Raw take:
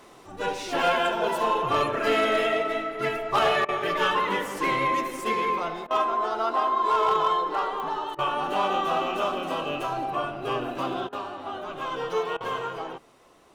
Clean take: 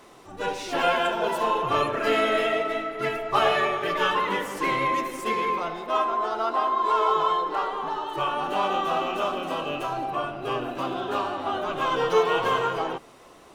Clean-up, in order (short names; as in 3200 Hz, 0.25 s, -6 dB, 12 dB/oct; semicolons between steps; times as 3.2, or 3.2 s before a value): clip repair -15.5 dBFS; de-click; interpolate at 3.65/5.87/8.15/11.09/12.37, 35 ms; gain 0 dB, from 11.07 s +6.5 dB